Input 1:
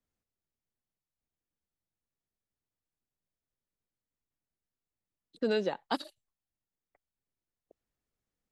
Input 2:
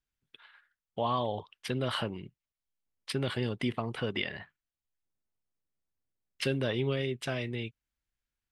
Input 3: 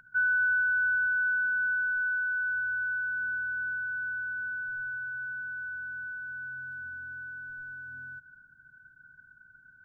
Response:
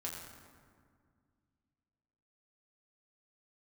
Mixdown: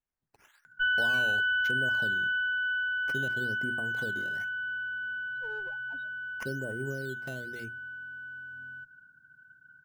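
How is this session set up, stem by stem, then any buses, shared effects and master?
-5.5 dB, 0.00 s, no send, high-pass 290 Hz; loudest bins only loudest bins 1; one-sided clip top -48 dBFS
-5.0 dB, 0.00 s, no send, hum notches 60/120/180/240/300/360 Hz; low-pass that closes with the level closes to 630 Hz, closed at -31 dBFS; decimation with a swept rate 9×, swing 100% 1 Hz
-1.0 dB, 0.65 s, no send, high-pass 110 Hz; Chebyshev shaper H 2 -11 dB, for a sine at -21 dBFS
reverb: none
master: none

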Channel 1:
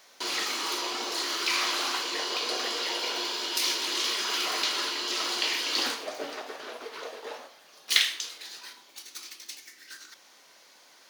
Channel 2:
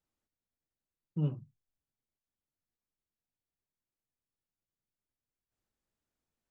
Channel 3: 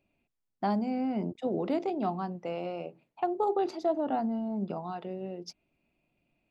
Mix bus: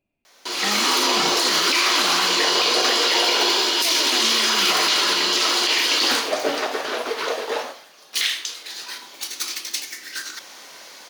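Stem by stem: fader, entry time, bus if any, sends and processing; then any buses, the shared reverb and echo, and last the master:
+2.0 dB, 0.25 s, no send, level rider gain up to 12.5 dB
-16.0 dB, 0.00 s, no send, none
-4.0 dB, 0.00 s, no send, none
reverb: none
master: peak limiter -9 dBFS, peak gain reduction 9.5 dB

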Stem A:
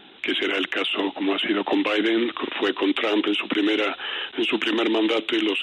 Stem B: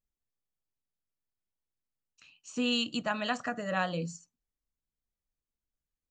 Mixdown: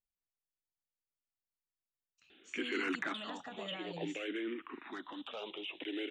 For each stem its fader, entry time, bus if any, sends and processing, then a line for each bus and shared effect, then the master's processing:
3.03 s -14 dB -> 3.40 s -24 dB, 2.30 s, no send, level rider gain up to 8 dB; barber-pole phaser -0.53 Hz
-11.0 dB, 0.00 s, no send, peak limiter -26.5 dBFS, peak gain reduction 10 dB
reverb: none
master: none

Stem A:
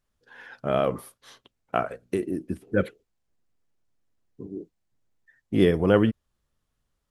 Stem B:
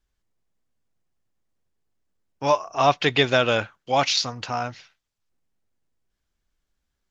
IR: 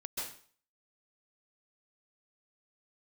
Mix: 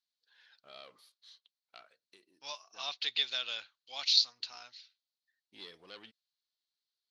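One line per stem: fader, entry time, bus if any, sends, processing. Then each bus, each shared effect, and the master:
+1.5 dB, 0.00 s, no send, saturation -14.5 dBFS, distortion -14 dB; auto duck -7 dB, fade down 1.20 s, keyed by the second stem
+1.5 dB, 0.00 s, no send, none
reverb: none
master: band-pass filter 4.2 kHz, Q 5.6

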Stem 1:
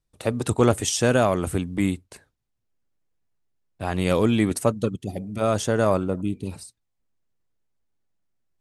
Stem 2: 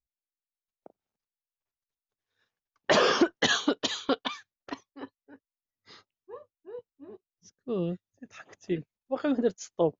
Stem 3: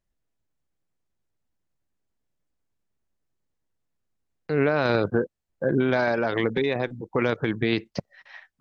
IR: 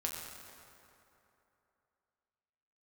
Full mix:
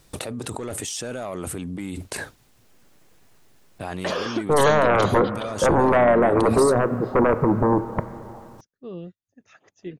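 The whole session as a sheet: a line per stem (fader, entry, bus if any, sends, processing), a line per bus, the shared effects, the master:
-12.0 dB, 0.00 s, no send, bass shelf 110 Hz -10.5 dB; saturation -13 dBFS, distortion -15 dB; level flattener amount 100%
-5.5 dB, 1.15 s, no send, none
-5.5 dB, 0.00 s, send -7.5 dB, FFT band-pass 100–900 Hz; sine folder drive 11 dB, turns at -10.5 dBFS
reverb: on, RT60 3.0 s, pre-delay 6 ms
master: none

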